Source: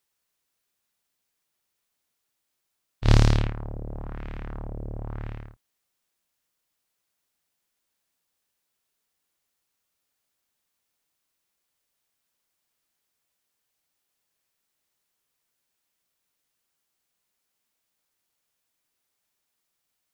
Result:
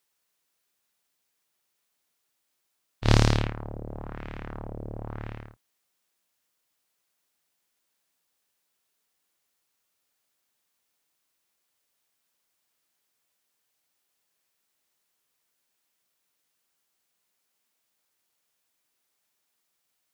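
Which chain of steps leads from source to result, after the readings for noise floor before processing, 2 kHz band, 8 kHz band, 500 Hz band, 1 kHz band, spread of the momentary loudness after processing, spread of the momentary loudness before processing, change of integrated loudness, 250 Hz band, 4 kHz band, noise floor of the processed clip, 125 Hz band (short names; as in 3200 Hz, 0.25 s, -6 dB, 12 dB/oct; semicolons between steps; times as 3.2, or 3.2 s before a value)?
-80 dBFS, +2.0 dB, +2.0 dB, +1.5 dB, +2.0 dB, 18 LU, 18 LU, -2.5 dB, 0.0 dB, +2.0 dB, -78 dBFS, -2.5 dB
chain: low shelf 110 Hz -9 dB; gain +2 dB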